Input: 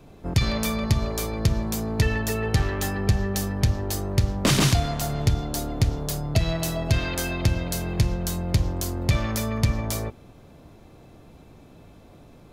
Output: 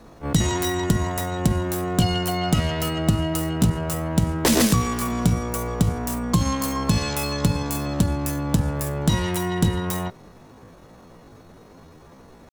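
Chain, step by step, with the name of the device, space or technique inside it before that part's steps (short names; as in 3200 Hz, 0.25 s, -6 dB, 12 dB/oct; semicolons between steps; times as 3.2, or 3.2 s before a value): chipmunk voice (pitch shift +8.5 st); gain +2 dB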